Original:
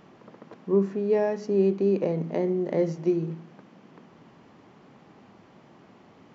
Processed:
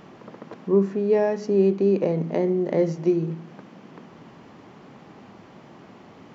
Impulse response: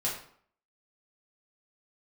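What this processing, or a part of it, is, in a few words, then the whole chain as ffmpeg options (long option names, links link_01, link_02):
parallel compression: -filter_complex "[0:a]asplit=2[link_01][link_02];[link_02]acompressor=threshold=-39dB:ratio=6,volume=-4.5dB[link_03];[link_01][link_03]amix=inputs=2:normalize=0,volume=2.5dB"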